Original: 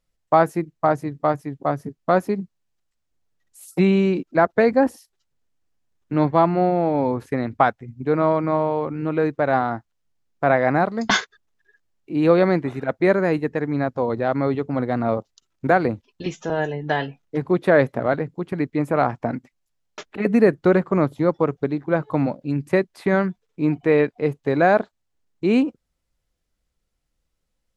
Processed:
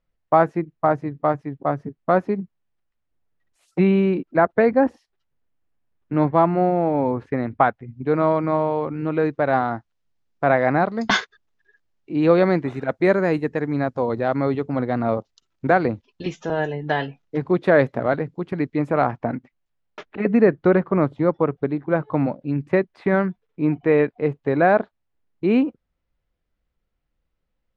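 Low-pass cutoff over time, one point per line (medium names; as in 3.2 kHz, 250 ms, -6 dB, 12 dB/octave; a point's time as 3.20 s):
7.69 s 2.6 kHz
8.20 s 5.2 kHz
12.20 s 5.2 kHz
13.03 s 9.7 kHz
14.26 s 9.7 kHz
14.90 s 5.4 kHz
18.72 s 5.4 kHz
19.36 s 2.8 kHz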